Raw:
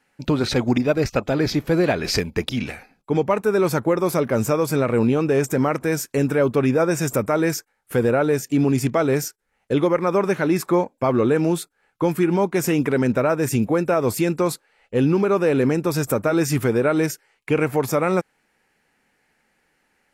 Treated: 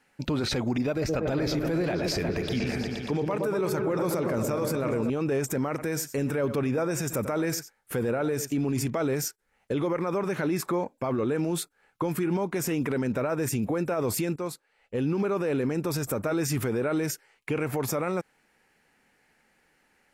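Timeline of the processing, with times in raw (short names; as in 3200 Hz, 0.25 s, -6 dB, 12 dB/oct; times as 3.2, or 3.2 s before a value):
0.9–5.1 repeats that get brighter 0.118 s, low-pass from 750 Hz, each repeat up 1 oct, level -6 dB
5.69–8.88 echo 91 ms -18.5 dB
14.36–15.69 fade in linear, from -14 dB
whole clip: limiter -20 dBFS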